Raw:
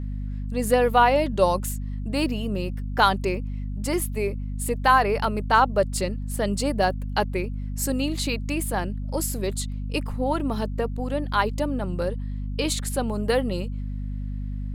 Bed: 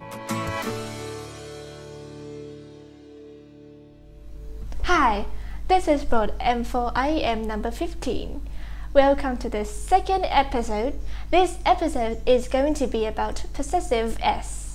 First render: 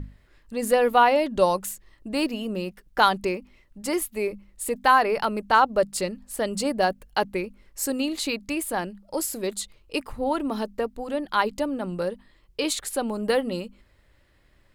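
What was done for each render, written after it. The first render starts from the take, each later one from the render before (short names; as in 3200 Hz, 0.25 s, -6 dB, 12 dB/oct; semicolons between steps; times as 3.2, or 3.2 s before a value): notches 50/100/150/200/250 Hz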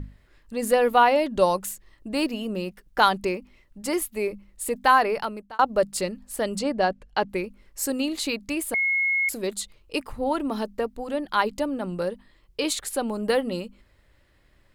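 5.04–5.59 fade out; 6.59–7.29 air absorption 84 m; 8.74–9.29 bleep 2170 Hz -20 dBFS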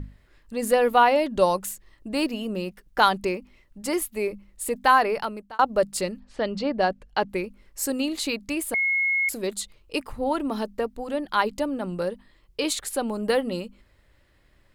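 6.2–6.79 LPF 4700 Hz 24 dB/oct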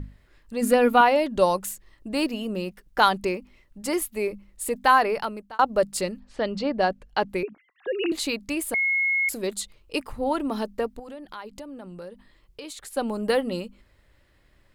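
0.61–1.01 small resonant body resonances 260/1400/2400 Hz, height 10 dB; 7.43–8.12 sine-wave speech; 10.99–12.97 compressor 3:1, threshold -40 dBFS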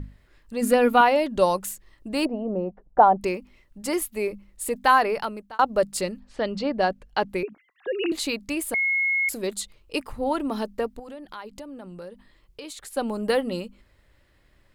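2.25–3.21 synth low-pass 740 Hz, resonance Q 2.9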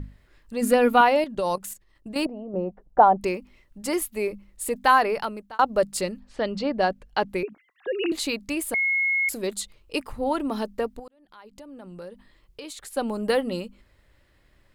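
1.24–2.54 level quantiser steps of 12 dB; 11.08–12.02 fade in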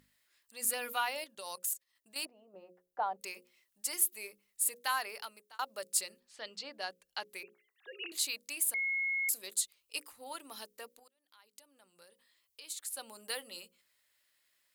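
differentiator; notches 60/120/180/240/300/360/420/480/540 Hz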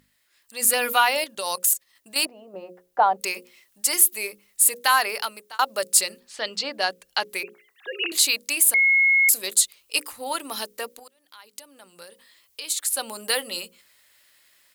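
AGC gain up to 10.5 dB; in parallel at -1.5 dB: limiter -14 dBFS, peak gain reduction 9.5 dB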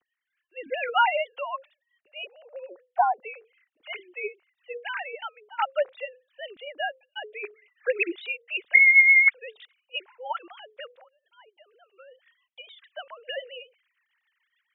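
sine-wave speech; rotary speaker horn 0.65 Hz, later 7 Hz, at 6.47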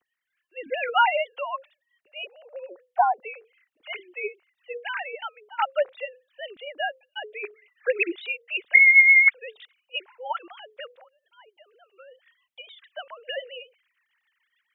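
gain +1.5 dB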